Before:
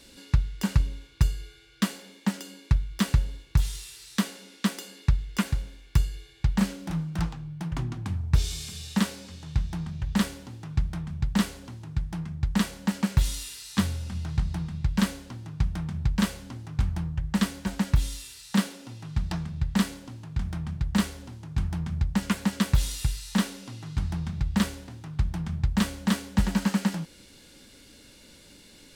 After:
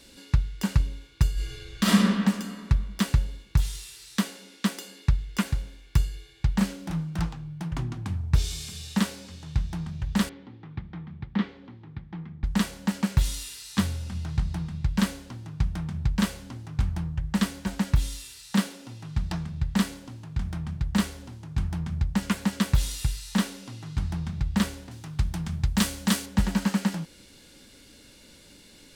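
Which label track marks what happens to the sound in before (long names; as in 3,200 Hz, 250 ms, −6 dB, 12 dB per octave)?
1.330000	1.970000	thrown reverb, RT60 1.9 s, DRR −9.5 dB
10.290000	12.440000	loudspeaker in its box 140–3,100 Hz, peaks and dips at 140 Hz −6 dB, 630 Hz −9 dB, 1,000 Hz −4 dB, 1,500 Hz −6 dB, 2,700 Hz −7 dB
24.910000	26.260000	high-shelf EQ 3,400 Hz +9 dB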